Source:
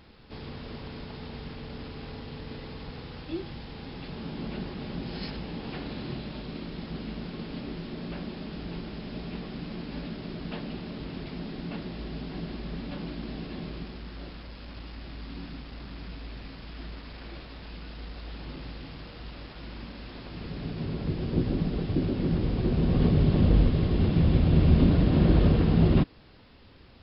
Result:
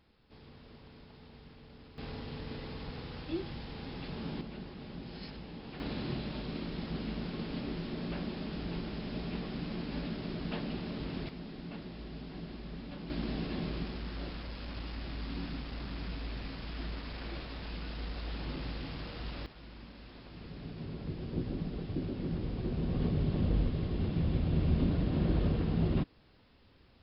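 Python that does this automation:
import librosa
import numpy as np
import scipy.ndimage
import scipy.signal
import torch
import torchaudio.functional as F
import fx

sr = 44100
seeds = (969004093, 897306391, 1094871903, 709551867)

y = fx.gain(x, sr, db=fx.steps((0.0, -14.0), (1.98, -2.0), (4.41, -9.0), (5.8, -1.0), (11.29, -7.5), (13.1, 1.0), (19.46, -9.0)))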